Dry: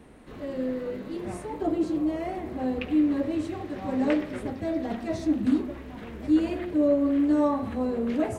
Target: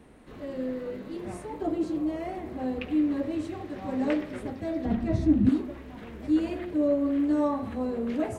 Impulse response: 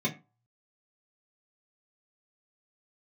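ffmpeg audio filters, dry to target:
-filter_complex "[0:a]asettb=1/sr,asplit=3[link_01][link_02][link_03];[link_01]atrim=end=4.854[link_04];[link_02]atrim=start=4.85:end=5.49,asetpts=PTS-STARTPTS,afade=type=in:duration=0.004:curve=qsin,afade=type=out:start_time=0.636:duration=0.004:curve=qsin,bass=frequency=250:gain=15,treble=frequency=4000:gain=-6[link_05];[link_03]atrim=start=5.486[link_06];[link_04][link_05]acrossfade=duration=0.004:curve1=hsin:curve2=qsin[link_07];[link_07][link_06]acrossfade=duration=0.004:curve1=qsin:curve2=hsin,volume=-2.5dB"

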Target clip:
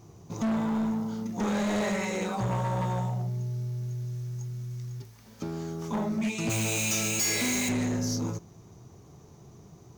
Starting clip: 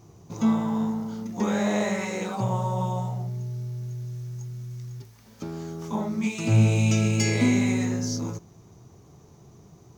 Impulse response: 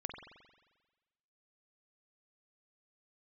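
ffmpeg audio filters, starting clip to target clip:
-filter_complex "[0:a]asplit=3[link_01][link_02][link_03];[link_01]afade=type=out:start_time=6.49:duration=0.02[link_04];[link_02]aemphasis=mode=production:type=riaa,afade=type=in:start_time=6.49:duration=0.02,afade=type=out:start_time=7.68:duration=0.02[link_05];[link_03]afade=type=in:start_time=7.68:duration=0.02[link_06];[link_04][link_05][link_06]amix=inputs=3:normalize=0,volume=25dB,asoftclip=hard,volume=-25dB"

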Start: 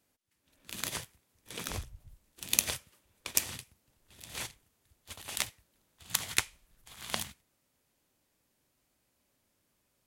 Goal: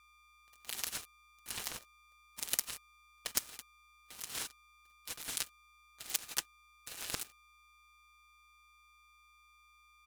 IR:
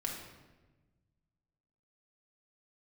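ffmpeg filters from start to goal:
-af "acompressor=threshold=-59dB:ratio=2.5,bass=frequency=250:gain=-11,treble=frequency=4000:gain=5,aecho=1:1:5.7:0.72,aeval=exprs='sgn(val(0))*max(abs(val(0))-0.001,0)':channel_layout=same,aeval=exprs='val(0)+0.000224*sin(2*PI*1800*n/s)':channel_layout=same,aeval=exprs='val(0)*sgn(sin(2*PI*580*n/s))':channel_layout=same,volume=11dB"

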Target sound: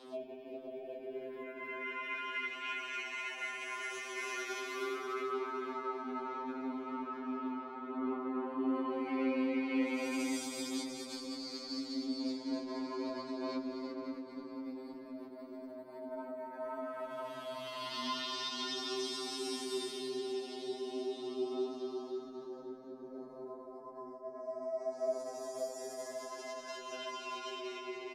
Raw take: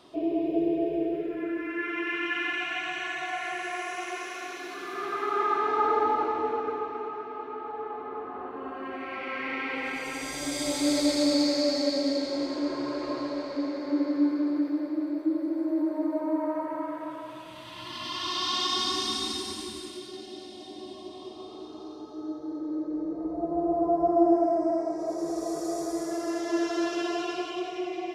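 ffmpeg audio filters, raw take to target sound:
ffmpeg -i in.wav -filter_complex "[0:a]highpass=frequency=190:width=0.5412,highpass=frequency=190:width=1.3066,equalizer=frequency=260:width_type=o:width=0.75:gain=6,acompressor=threshold=-31dB:ratio=2,alimiter=level_in=5.5dB:limit=-24dB:level=0:latency=1:release=21,volume=-5.5dB,flanger=delay=15.5:depth=7.5:speed=0.37,asplit=2[link_01][link_02];[link_02]adelay=537,lowpass=frequency=1500:poles=1,volume=-7dB,asplit=2[link_03][link_04];[link_04]adelay=537,lowpass=frequency=1500:poles=1,volume=0.52,asplit=2[link_05][link_06];[link_06]adelay=537,lowpass=frequency=1500:poles=1,volume=0.52,asplit=2[link_07][link_08];[link_08]adelay=537,lowpass=frequency=1500:poles=1,volume=0.52,asplit=2[link_09][link_10];[link_10]adelay=537,lowpass=frequency=1500:poles=1,volume=0.52,asplit=2[link_11][link_12];[link_12]adelay=537,lowpass=frequency=1500:poles=1,volume=0.52[link_13];[link_03][link_05][link_07][link_09][link_11][link_13]amix=inputs=6:normalize=0[link_14];[link_01][link_14]amix=inputs=2:normalize=0,afftfilt=real='re*2.45*eq(mod(b,6),0)':imag='im*2.45*eq(mod(b,6),0)':win_size=2048:overlap=0.75,volume=4.5dB" out.wav

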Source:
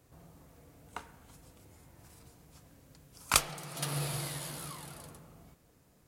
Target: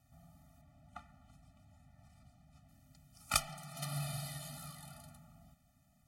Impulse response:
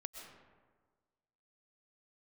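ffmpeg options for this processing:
-filter_complex "[0:a]asettb=1/sr,asplit=3[link_01][link_02][link_03];[link_01]atrim=end=0.614[link_04];[link_02]atrim=start=0.61:end=2.69,asetpts=PTS-STARTPTS,afade=type=in:duration=0.004:curve=qsin,afade=type=out:start_time=2.076:duration=0.004:curve=qsin,aemphasis=mode=reproduction:type=50kf[link_05];[link_03]atrim=start=2.686[link_06];[link_04][link_05]acrossfade=duration=0.004:curve1=hsin:curve2=qsin[link_07];[link_07][link_06]acrossfade=duration=0.004:curve1=qsin:curve2=hsin,afftfilt=real='re*eq(mod(floor(b*sr/1024/290),2),0)':imag='im*eq(mod(floor(b*sr/1024/290),2),0)':win_size=1024:overlap=0.75,volume=-3.5dB"

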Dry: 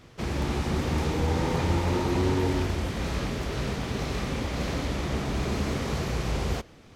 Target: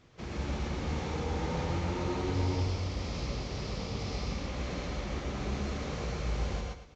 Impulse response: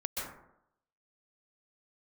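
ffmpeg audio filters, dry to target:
-filter_complex "[0:a]asettb=1/sr,asplit=3[link_01][link_02][link_03];[link_01]atrim=end=2.344[link_04];[link_02]atrim=start=2.34:end=4.36,asetpts=PTS-STARTPTS,afade=type=in:duration=0.004:curve=qsin,afade=type=out:start_time=2.016:duration=0.004:curve=qsin,equalizer=frequency=100:width_type=o:width=0.33:gain=8,equalizer=frequency=1600:width_type=o:width=0.33:gain=-7,equalizer=frequency=5000:width_type=o:width=0.33:gain=9[link_05];[link_03]atrim=start=4.356[link_06];[link_04][link_05]acrossfade=duration=0.004:curve1=hsin:curve2=qsin[link_07];[link_07][link_06]acrossfade=duration=0.004:curve1=qsin:curve2=hsin,aecho=1:1:109|218|327:0.299|0.0866|0.0251[link_08];[1:a]atrim=start_sample=2205,atrim=end_sample=6174[link_09];[link_08][link_09]afir=irnorm=-1:irlink=0,volume=-8dB" -ar 16000 -c:a pcm_mulaw

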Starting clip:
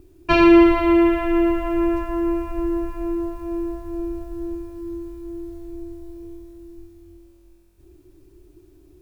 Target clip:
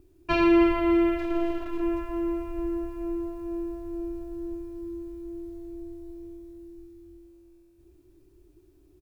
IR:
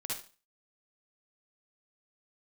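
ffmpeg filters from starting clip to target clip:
-filter_complex "[0:a]asplit=3[link_01][link_02][link_03];[link_01]afade=type=out:start_time=1.17:duration=0.02[link_04];[link_02]aeval=exprs='max(val(0),0)':channel_layout=same,afade=type=in:start_time=1.17:duration=0.02,afade=type=out:start_time=1.81:duration=0.02[link_05];[link_03]afade=type=in:start_time=1.81:duration=0.02[link_06];[link_04][link_05][link_06]amix=inputs=3:normalize=0,aecho=1:1:309|618|927|1236|1545|1854:0.224|0.121|0.0653|0.0353|0.019|0.0103,volume=-8dB"

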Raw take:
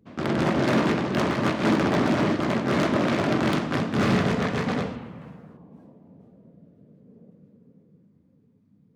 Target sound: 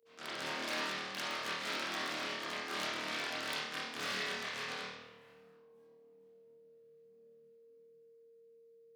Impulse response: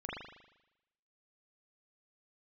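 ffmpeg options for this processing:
-filter_complex "[0:a]aeval=exprs='val(0)+0.00501*sin(2*PI*460*n/s)':channel_layout=same,aderivative[link_01];[1:a]atrim=start_sample=2205,asetrate=66150,aresample=44100[link_02];[link_01][link_02]afir=irnorm=-1:irlink=0,volume=4.5dB"

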